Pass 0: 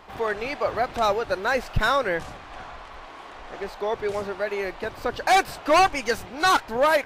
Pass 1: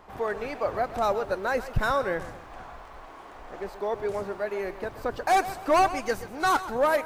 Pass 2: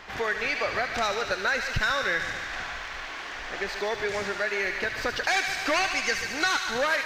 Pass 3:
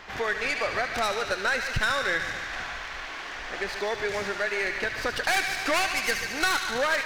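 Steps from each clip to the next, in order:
peaking EQ 3.4 kHz -8 dB 1.9 oct; bit-crushed delay 130 ms, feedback 35%, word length 9-bit, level -14 dB; trim -2 dB
high-order bell 3.2 kHz +14.5 dB 2.5 oct; compression 3:1, threshold -28 dBFS, peak gain reduction 11.5 dB; on a send: feedback echo behind a high-pass 73 ms, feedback 79%, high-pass 1.5 kHz, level -6 dB; on the sum: trim +2 dB
tracing distortion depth 0.065 ms

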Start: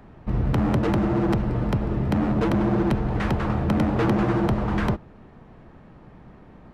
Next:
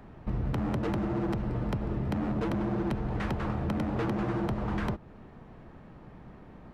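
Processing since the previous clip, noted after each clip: compression 3:1, threshold -27 dBFS, peak gain reduction 8.5 dB; trim -2 dB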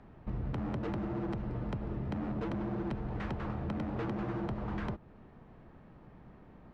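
distance through air 77 m; trim -5.5 dB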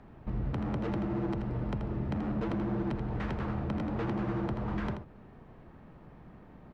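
delay 82 ms -8 dB; trim +2 dB

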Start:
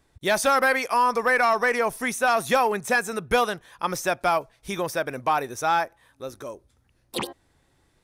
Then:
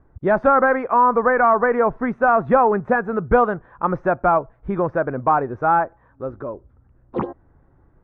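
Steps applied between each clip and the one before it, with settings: Chebyshev low-pass 1.4 kHz, order 3; tilt EQ -1.5 dB/octave; trim +6 dB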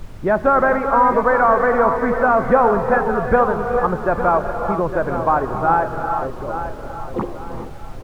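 added noise brown -33 dBFS; feedback delay 858 ms, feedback 31%, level -10.5 dB; gated-style reverb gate 450 ms rising, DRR 5.5 dB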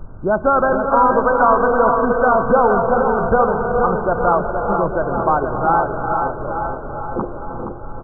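brick-wall FIR low-pass 1.6 kHz; feedback delay 471 ms, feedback 43%, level -6 dB

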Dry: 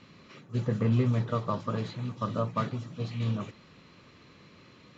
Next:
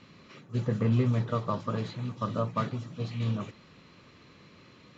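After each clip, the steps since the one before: no audible change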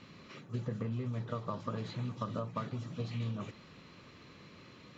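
compression 12:1, threshold -33 dBFS, peak gain reduction 13.5 dB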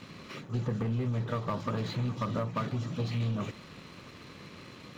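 waveshaping leveller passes 2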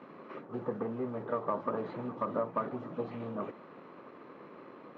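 companded quantiser 6-bit; Butterworth band-pass 610 Hz, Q 0.63; trim +3 dB

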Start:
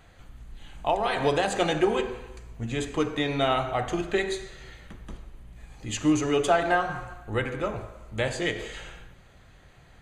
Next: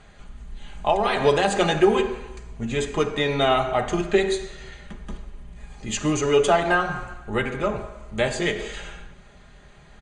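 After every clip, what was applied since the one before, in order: Chebyshev low-pass 9.3 kHz, order 5; comb 4.9 ms, depth 53%; trim +4 dB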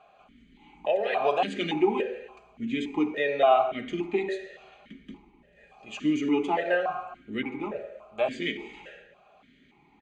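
stepped vowel filter 3.5 Hz; trim +6.5 dB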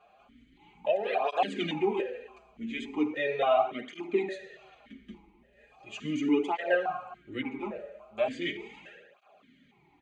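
cancelling through-zero flanger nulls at 0.38 Hz, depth 8 ms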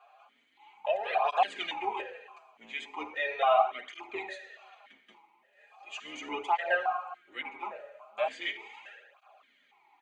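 octave divider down 2 oct, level 0 dB; resonant high-pass 890 Hz, resonance Q 1.8

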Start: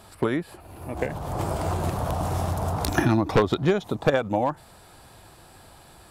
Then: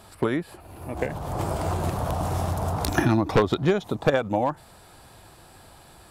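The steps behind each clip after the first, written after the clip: no audible change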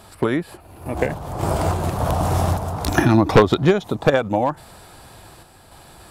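random-step tremolo; trim +7.5 dB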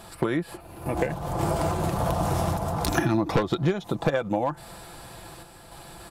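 comb 5.9 ms, depth 41%; compression 3:1, threshold -23 dBFS, peak gain reduction 12.5 dB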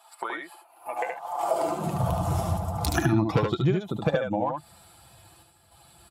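expander on every frequency bin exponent 1.5; delay 73 ms -4.5 dB; high-pass sweep 840 Hz -> 78 Hz, 1.40–2.14 s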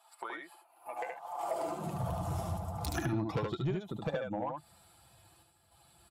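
saturation -16.5 dBFS, distortion -18 dB; trim -8.5 dB

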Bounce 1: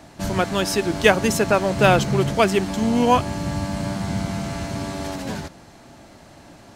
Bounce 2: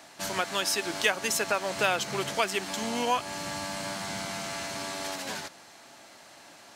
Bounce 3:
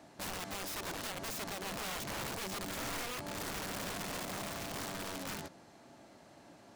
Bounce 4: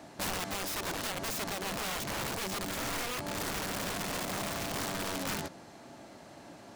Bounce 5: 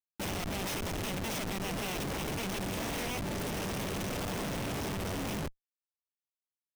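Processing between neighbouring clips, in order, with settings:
high-pass 1.4 kHz 6 dB/octave; compression 2:1, threshold -28 dBFS, peak gain reduction 8 dB; trim +1.5 dB
tilt shelf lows +9 dB, about 710 Hz; peak limiter -24 dBFS, peak gain reduction 9.5 dB; integer overflow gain 30 dB; trim -5 dB
gain riding; trim +5 dB
comb filter that takes the minimum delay 0.34 ms; Schmitt trigger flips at -37.5 dBFS; trim +3 dB

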